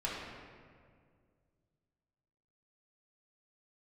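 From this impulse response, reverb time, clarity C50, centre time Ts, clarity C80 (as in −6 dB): 2.0 s, −0.5 dB, 103 ms, 1.5 dB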